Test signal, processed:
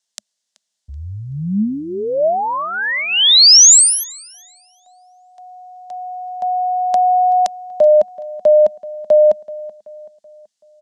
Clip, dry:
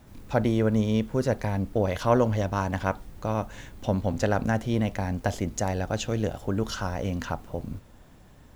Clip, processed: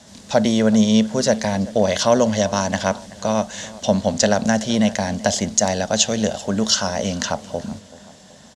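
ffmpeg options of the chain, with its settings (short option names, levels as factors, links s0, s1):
-filter_complex "[0:a]crystalizer=i=2:c=0,tiltshelf=f=1300:g=-6,acrossover=split=460|3000[s0][s1][s2];[s1]acompressor=threshold=0.0501:ratio=6[s3];[s0][s3][s2]amix=inputs=3:normalize=0,highpass=100,equalizer=f=120:t=q:w=4:g=-5,equalizer=f=210:t=q:w=4:g=9,equalizer=f=320:t=q:w=4:g=-6,equalizer=f=620:t=q:w=4:g=8,equalizer=f=1300:t=q:w=4:g=-6,equalizer=f=2400:t=q:w=4:g=-8,lowpass=f=7100:w=0.5412,lowpass=f=7100:w=1.3066,asplit=2[s4][s5];[s5]adelay=380,lowpass=f=3300:p=1,volume=0.112,asplit=2[s6][s7];[s7]adelay=380,lowpass=f=3300:p=1,volume=0.46,asplit=2[s8][s9];[s9]adelay=380,lowpass=f=3300:p=1,volume=0.46,asplit=2[s10][s11];[s11]adelay=380,lowpass=f=3300:p=1,volume=0.46[s12];[s4][s6][s8][s10][s12]amix=inputs=5:normalize=0,alimiter=level_in=3.35:limit=0.891:release=50:level=0:latency=1,volume=0.841"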